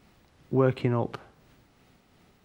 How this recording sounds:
tremolo triangle 2.8 Hz, depth 35%

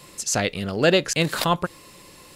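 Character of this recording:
background noise floor −48 dBFS
spectral slope −3.5 dB per octave

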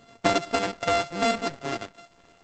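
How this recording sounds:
a buzz of ramps at a fixed pitch in blocks of 64 samples
Opus

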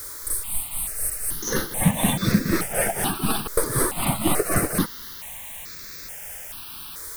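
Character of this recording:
tremolo triangle 4 Hz, depth 85%
a quantiser's noise floor 8 bits, dither triangular
notches that jump at a steady rate 2.3 Hz 750–3,000 Hz

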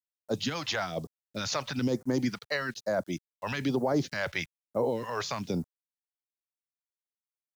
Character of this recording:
a quantiser's noise floor 10 bits, dither none
phaser sweep stages 2, 1.1 Hz, lowest notch 230–2,900 Hz

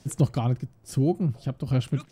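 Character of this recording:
tremolo saw down 1.2 Hz, depth 45%

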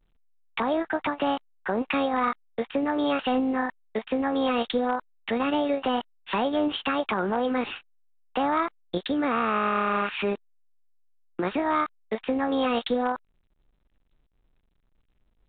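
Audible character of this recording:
A-law companding

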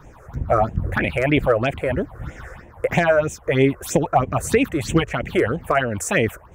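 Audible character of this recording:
phaser sweep stages 6, 3.1 Hz, lowest notch 210–1,300 Hz

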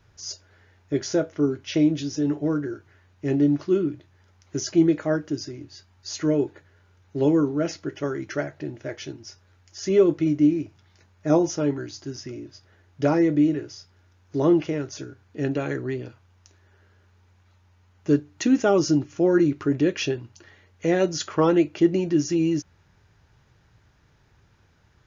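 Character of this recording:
background noise floor −60 dBFS
spectral slope −6.0 dB per octave

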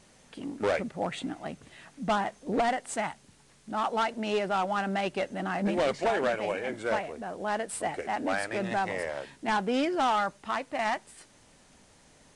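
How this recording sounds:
a quantiser's noise floor 10 bits, dither triangular
Ogg Vorbis

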